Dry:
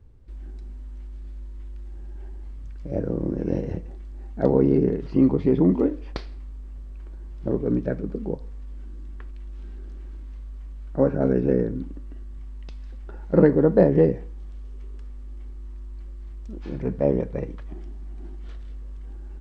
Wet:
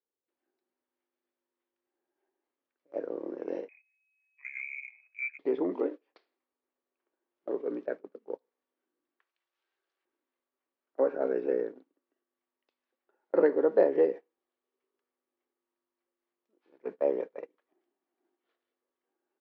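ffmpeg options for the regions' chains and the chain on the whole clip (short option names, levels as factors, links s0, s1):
-filter_complex "[0:a]asettb=1/sr,asplit=3[s0][s1][s2];[s0]atrim=end=3.684[s3];[s1]atrim=start=3.68:end=5.39,asetpts=PTS-STARTPTS,afade=t=in:d=0.004:c=qsin,afade=t=out:st=1.706:d=0.004:c=qsin,lowpass=f=2200:t=q:w=0.5098,lowpass=f=2200:t=q:w=0.6013,lowpass=f=2200:t=q:w=0.9,lowpass=f=2200:t=q:w=2.563,afreqshift=-2600,agate=range=0.2:threshold=0.02:ratio=16:release=100:detection=peak,acompressor=threshold=0.0251:ratio=2:attack=3.2:release=140:knee=1:detection=peak[s4];[s2]atrim=start=5.386[s5];[s3][s4]acrossfade=d=0.004:c1=hsin:c2=qsin[s6];[s6][s5]acrossfade=d=0.004:c1=qsin:c2=hsin,asettb=1/sr,asplit=3[s7][s8][s9];[s7]atrim=end=9.194[s10];[s8]atrim=start=9.19:end=10.05,asetpts=PTS-STARTPTS,afade=t=in:d=0.004:c=qsin,afade=t=out:st=0.856:d=0.004:c=qsin,highpass=630,highshelf=f=2300:g=10.5[s11];[s9]atrim=start=10.046[s12];[s10][s11]acrossfade=d=0.004:c1=hsin:c2=qsin[s13];[s13][s12]acrossfade=d=0.004:c1=qsin:c2=hsin,lowpass=4000,agate=range=0.0794:threshold=0.0501:ratio=16:detection=peak,highpass=f=370:w=0.5412,highpass=f=370:w=1.3066,volume=0.596"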